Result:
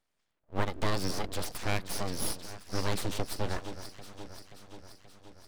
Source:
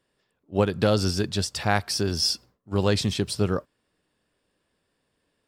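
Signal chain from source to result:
delay that swaps between a low-pass and a high-pass 265 ms, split 1,300 Hz, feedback 79%, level −10.5 dB
full-wave rectification
level −6 dB

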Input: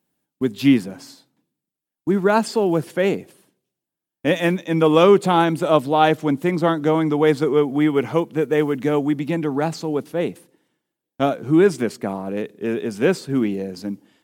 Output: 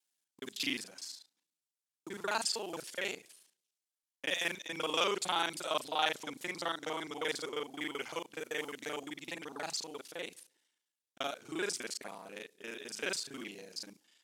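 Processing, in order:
reversed piece by piece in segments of 35 ms
resonant band-pass 6,200 Hz, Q 0.85

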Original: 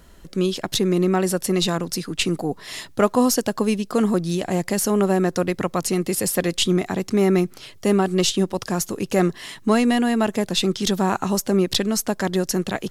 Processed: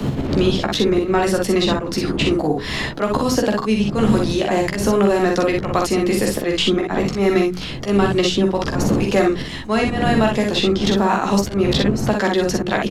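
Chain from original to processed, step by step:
wind on the microphone 110 Hz −21 dBFS
mains-hum notches 60/120/180/240/300/360/420/480 Hz
volume swells 171 ms
reversed playback
upward compression, threshold −27 dBFS
reversed playback
three-way crossover with the lows and the highs turned down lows −13 dB, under 170 Hz, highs −14 dB, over 5,100 Hz
ambience of single reflections 14 ms −7 dB, 45 ms −5.5 dB, 60 ms −4.5 dB
multiband upward and downward compressor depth 70%
level +3.5 dB

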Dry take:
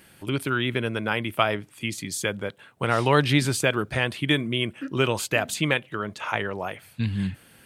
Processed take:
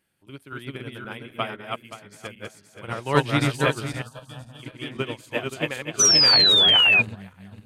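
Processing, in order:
feedback delay that plays each chunk backwards 262 ms, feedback 62%, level −1 dB
0:04.02–0:04.63: phaser with its sweep stopped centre 870 Hz, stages 4
0:05.99–0:07.02: sound drawn into the spectrogram fall 2,400–6,100 Hz −15 dBFS
expander for the loud parts 2.5 to 1, over −28 dBFS

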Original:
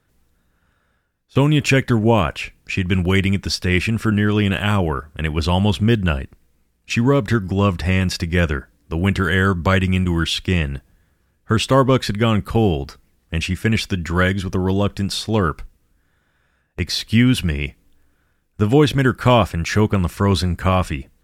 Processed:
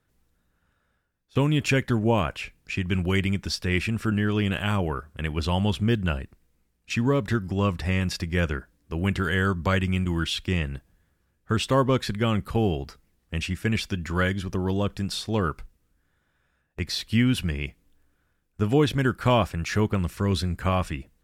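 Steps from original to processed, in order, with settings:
0:19.98–0:20.57: dynamic equaliser 890 Hz, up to −7 dB, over −35 dBFS, Q 1.3
level −7 dB

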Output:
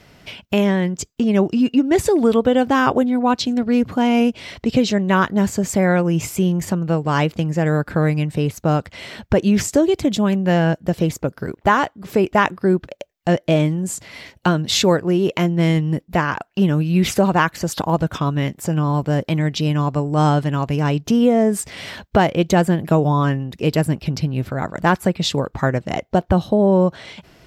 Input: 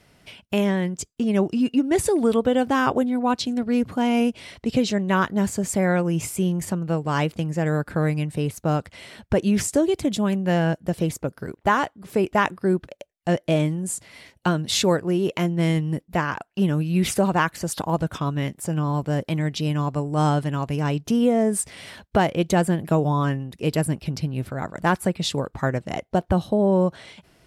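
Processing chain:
parametric band 9,600 Hz −13.5 dB 0.32 octaves
in parallel at −2.5 dB: downward compressor, threshold −34 dBFS, peak gain reduction 18.5 dB
on the sum: level +3.5 dB

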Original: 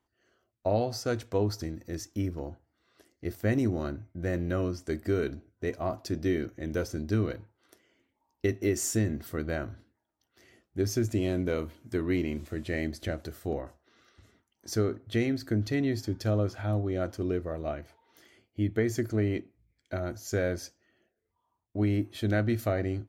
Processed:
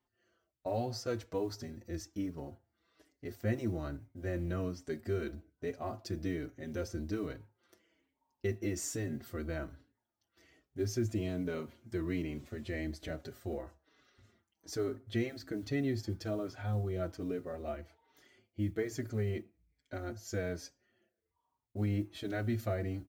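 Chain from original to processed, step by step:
parametric band 11,000 Hz −7.5 dB 0.54 octaves
in parallel at −2.5 dB: brickwall limiter −25.5 dBFS, peak gain reduction 10 dB
on the sum: noise that follows the level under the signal 35 dB
barber-pole flanger 5.1 ms −1.2 Hz
level −7 dB

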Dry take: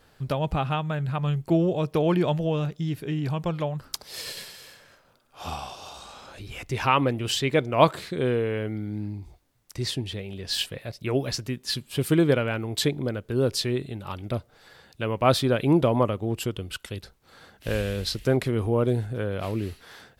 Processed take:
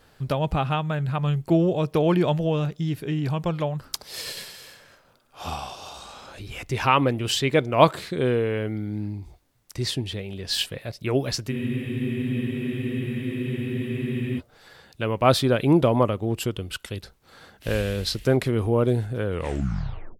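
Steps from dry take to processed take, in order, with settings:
turntable brake at the end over 0.94 s
frozen spectrum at 0:11.55, 2.83 s
level +2 dB

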